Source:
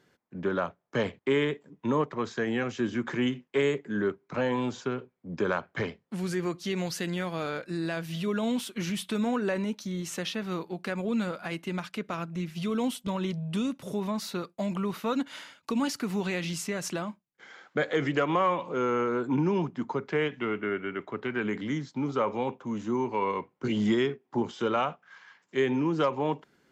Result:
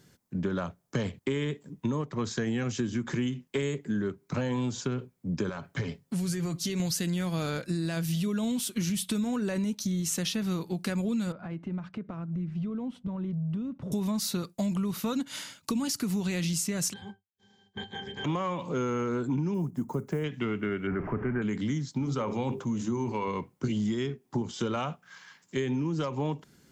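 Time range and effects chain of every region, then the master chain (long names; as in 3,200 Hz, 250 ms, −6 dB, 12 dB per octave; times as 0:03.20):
0:05.49–0:06.80: comb filter 7.2 ms, depth 40% + downward compressor 2.5 to 1, threshold −34 dBFS
0:11.32–0:13.92: low-pass filter 1,300 Hz + downward compressor 3 to 1, threshold −41 dBFS
0:16.92–0:18.24: ceiling on every frequency bin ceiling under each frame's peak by 29 dB + high-pass filter 170 Hz 6 dB per octave + resonances in every octave G, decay 0.12 s
0:19.54–0:20.24: one scale factor per block 7 bits + drawn EQ curve 640 Hz 0 dB, 1,300 Hz −5 dB, 4,100 Hz −15 dB, 6,800 Hz −4 dB
0:20.87–0:21.42: converter with a step at zero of −34 dBFS + inverse Chebyshev low-pass filter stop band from 3,700 Hz
0:21.99–0:23.28: mains-hum notches 50/100/150/200/250/300/350/400/450 Hz + level that may fall only so fast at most 100 dB per second
whole clip: bass and treble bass +13 dB, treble +14 dB; downward compressor 6 to 1, threshold −27 dBFS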